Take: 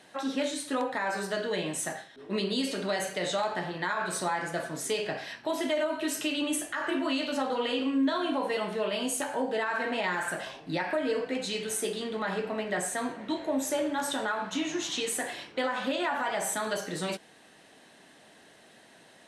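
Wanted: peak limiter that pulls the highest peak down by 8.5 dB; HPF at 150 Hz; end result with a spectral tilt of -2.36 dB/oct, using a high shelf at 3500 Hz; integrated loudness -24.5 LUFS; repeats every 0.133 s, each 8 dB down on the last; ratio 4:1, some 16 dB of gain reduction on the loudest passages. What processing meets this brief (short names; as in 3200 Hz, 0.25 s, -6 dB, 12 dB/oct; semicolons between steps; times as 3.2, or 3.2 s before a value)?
HPF 150 Hz; high shelf 3500 Hz +5 dB; compressor 4:1, threshold -45 dBFS; limiter -37.5 dBFS; feedback echo 0.133 s, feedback 40%, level -8 dB; gain +21 dB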